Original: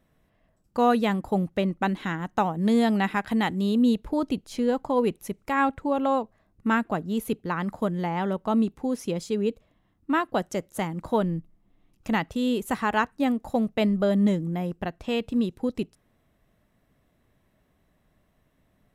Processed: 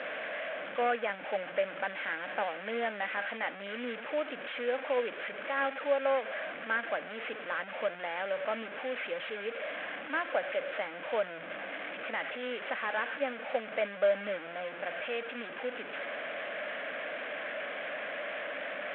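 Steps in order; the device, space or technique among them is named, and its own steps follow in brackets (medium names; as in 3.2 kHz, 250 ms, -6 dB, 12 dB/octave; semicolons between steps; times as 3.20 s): digital answering machine (band-pass 320–3400 Hz; one-bit delta coder 16 kbps, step -28 dBFS; cabinet simulation 360–3900 Hz, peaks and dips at 380 Hz -10 dB, 580 Hz +8 dB, 940 Hz -6 dB, 1.6 kHz +9 dB, 2.3 kHz +6 dB, 3.3 kHz +6 dB); peaking EQ 510 Hz +2.5 dB; trim -7.5 dB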